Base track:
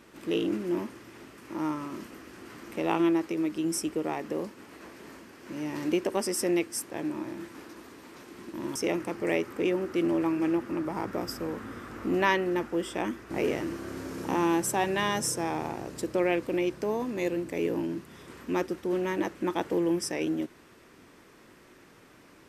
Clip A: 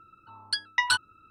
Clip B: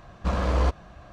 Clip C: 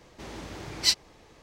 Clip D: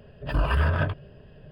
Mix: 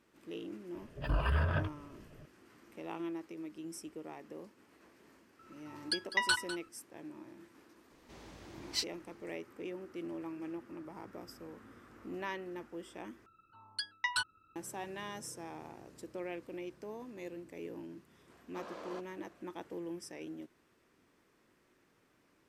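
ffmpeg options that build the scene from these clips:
-filter_complex "[1:a]asplit=2[a][b];[0:a]volume=-15.5dB[c];[a]aecho=1:1:201:0.211[d];[2:a]highpass=f=260:w=0.5412,highpass=f=260:w=1.3066[e];[c]asplit=2[f][g];[f]atrim=end=13.264[h];[b]atrim=end=1.3,asetpts=PTS-STARTPTS,volume=-9.5dB[i];[g]atrim=start=14.556[j];[4:a]atrim=end=1.51,asetpts=PTS-STARTPTS,volume=-8dB,afade=t=in:d=0.004:c=hsin,afade=t=out:st=1.506:d=0.004:c=hsin,adelay=750[k];[d]atrim=end=1.3,asetpts=PTS-STARTPTS,volume=-6dB,afade=t=in:d=0.004:c=hsin,afade=t=out:st=1.296:d=0.004:c=hsin,adelay=5390[l];[3:a]atrim=end=1.42,asetpts=PTS-STARTPTS,volume=-12.5dB,afade=t=in:d=0.004:c=hsin,afade=t=out:st=1.416:d=0.004:c=hsin,adelay=7900[m];[e]atrim=end=1.12,asetpts=PTS-STARTPTS,volume=-17.5dB,afade=t=in:d=0.004:c=hsin,afade=t=out:st=1.116:d=0.004:c=hsin,adelay=18300[n];[h][i]acrossfade=d=0.004:c1=hsin:c2=hsin[o];[o][j]acrossfade=d=0.004:c1=hsin:c2=hsin[p];[p][k][l][m][n]amix=inputs=5:normalize=0"

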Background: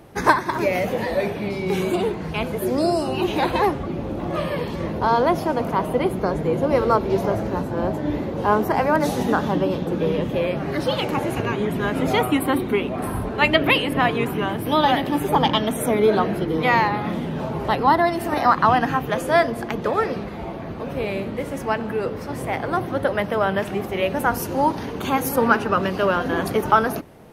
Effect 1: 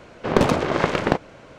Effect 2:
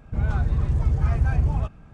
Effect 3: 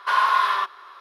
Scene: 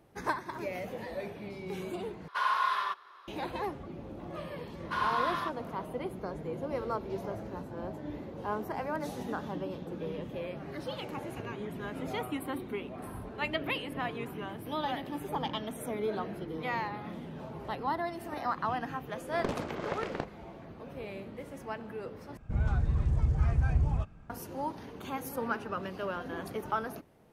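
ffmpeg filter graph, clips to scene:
-filter_complex "[3:a]asplit=2[a][b];[0:a]volume=-16dB[c];[a]equalizer=f=160:w=0.66:g=5.5[d];[c]asplit=3[e][f][g];[e]atrim=end=2.284[h];[d]atrim=end=1,asetpts=PTS-STARTPTS,volume=-10dB[i];[f]atrim=start=3.276:end=22.374[j];[2:a]atrim=end=1.93,asetpts=PTS-STARTPTS,volume=-6dB[k];[g]atrim=start=24.296[l];[b]atrim=end=1,asetpts=PTS-STARTPTS,volume=-12dB,afade=t=in:d=0.004:c=hsin,afade=t=out:st=0.996:d=0.004:c=hsin,adelay=4840[m];[1:a]atrim=end=1.58,asetpts=PTS-STARTPTS,volume=-16.5dB,afade=t=in:d=0.004:c=hsin,afade=t=out:st=1.576:d=0.004:c=hsin,adelay=841428S[n];[h][i]acrossfade=d=0.004:c1=hsin:c2=hsin[o];[o][j]acrossfade=d=0.004:c1=hsin:c2=hsin[p];[p][k]acrossfade=d=0.004:c1=hsin:c2=hsin[q];[q][l]acrossfade=d=0.004:c1=hsin:c2=hsin[r];[r][m][n]amix=inputs=3:normalize=0"

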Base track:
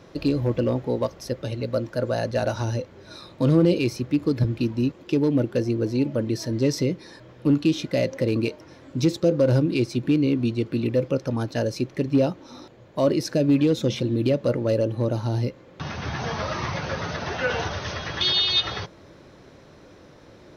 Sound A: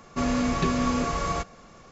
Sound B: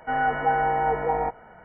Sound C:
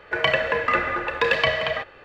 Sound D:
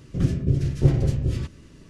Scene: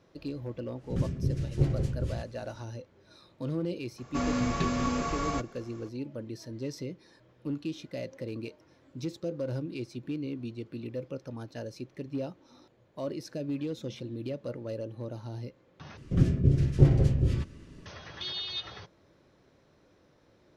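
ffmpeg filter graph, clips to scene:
-filter_complex "[4:a]asplit=2[a][b];[0:a]volume=-14.5dB[c];[b]highshelf=f=4.5k:g=-7[d];[c]asplit=2[e][f];[e]atrim=end=15.974[g];[d]atrim=end=1.89,asetpts=PTS-STARTPTS,volume=-1.5dB[h];[f]atrim=start=17.856[i];[a]atrim=end=1.89,asetpts=PTS-STARTPTS,volume=-8dB,afade=t=in:d=0.1,afade=t=out:st=1.79:d=0.1,adelay=760[j];[1:a]atrim=end=1.91,asetpts=PTS-STARTPTS,volume=-4.5dB,afade=t=in:d=0.004:c=hsin,afade=t=out:st=1.906:d=0.004:c=hsin,adelay=3980[k];[g][h]acrossfade=d=0.004:c1=hsin:c2=hsin[l];[l][i]acrossfade=d=0.004:c1=hsin:c2=hsin[m];[m][j][k]amix=inputs=3:normalize=0"

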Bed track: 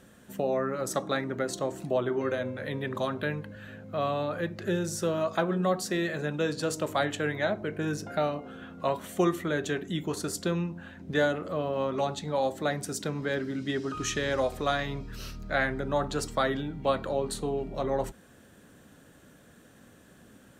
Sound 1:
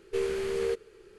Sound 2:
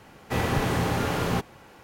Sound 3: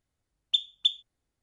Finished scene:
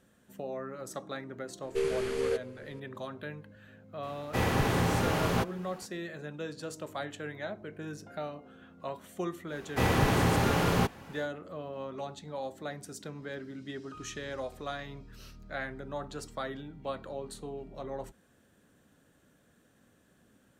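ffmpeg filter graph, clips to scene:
-filter_complex "[2:a]asplit=2[a][b];[0:a]volume=-10dB[c];[1:a]atrim=end=1.18,asetpts=PTS-STARTPTS,volume=-0.5dB,afade=t=in:d=0.004:c=hsin,afade=t=out:st=1.176:d=0.004:c=hsin,adelay=1620[d];[a]atrim=end=1.83,asetpts=PTS-STARTPTS,volume=-2.5dB,afade=t=in:d=0.004:c=hsin,afade=t=out:st=1.826:d=0.004:c=hsin,adelay=4030[e];[b]atrim=end=1.83,asetpts=PTS-STARTPTS,volume=-0.5dB,afade=t=in:d=0.1,afade=t=out:st=1.73:d=0.1,adelay=417186S[f];[c][d][e][f]amix=inputs=4:normalize=0"

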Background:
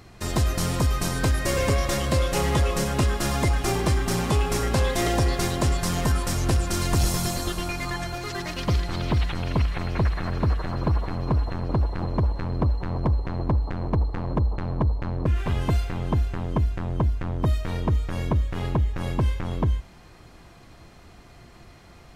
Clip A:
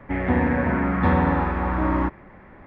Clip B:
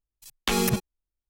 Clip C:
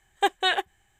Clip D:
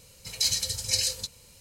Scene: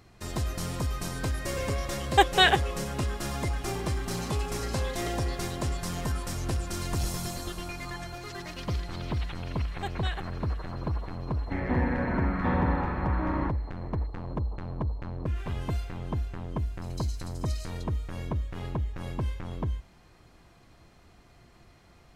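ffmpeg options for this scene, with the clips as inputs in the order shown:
-filter_complex "[3:a]asplit=2[a][b];[4:a]asplit=2[c][d];[0:a]volume=-8dB[e];[a]dynaudnorm=f=110:g=3:m=7dB[f];[c]alimiter=limit=-16dB:level=0:latency=1:release=71[g];[d]acompressor=threshold=-52dB:ratio=1.5:attack=59:release=85:knee=1:detection=peak[h];[f]atrim=end=0.99,asetpts=PTS-STARTPTS,volume=-3dB,afade=t=in:d=0.004:c=hsin,afade=t=out:st=0.986:d=0.004:c=hsin,adelay=1950[i];[g]atrim=end=1.6,asetpts=PTS-STARTPTS,volume=-17.5dB,afade=t=in:d=0.004:c=hsin,afade=t=out:st=1.596:d=0.004:c=hsin,adelay=3700[j];[b]atrim=end=0.99,asetpts=PTS-STARTPTS,volume=-14dB,afade=t=in:d=0.004:c=hsin,afade=t=out:st=0.986:d=0.004:c=hsin,adelay=9600[k];[1:a]atrim=end=2.66,asetpts=PTS-STARTPTS,volume=-7.5dB,afade=t=in:d=0.004:c=hsin,afade=t=out:st=2.656:d=0.004:c=hsin,adelay=11410[l];[h]atrim=end=1.6,asetpts=PTS-STARTPTS,volume=-13.5dB,afade=t=in:d=0.004:c=hsin,afade=t=out:st=1.596:d=0.004:c=hsin,adelay=16570[m];[e][i][j][k][l][m]amix=inputs=6:normalize=0"

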